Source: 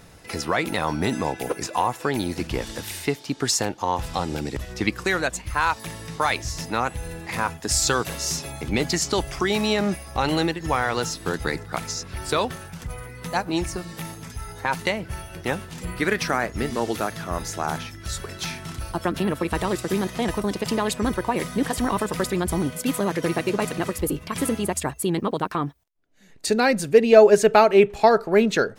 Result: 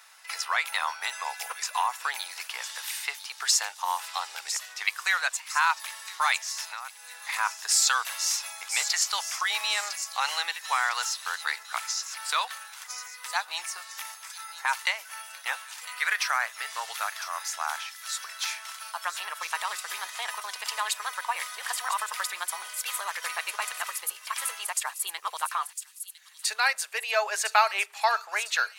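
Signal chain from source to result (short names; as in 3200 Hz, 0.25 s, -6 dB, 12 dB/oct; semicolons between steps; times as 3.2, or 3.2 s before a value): inverse Chebyshev high-pass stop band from 280 Hz, stop band 60 dB; 6.66–7.26 compressor 3:1, threshold -39 dBFS, peak gain reduction 12.5 dB; thin delay 1.005 s, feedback 45%, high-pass 4800 Hz, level -7 dB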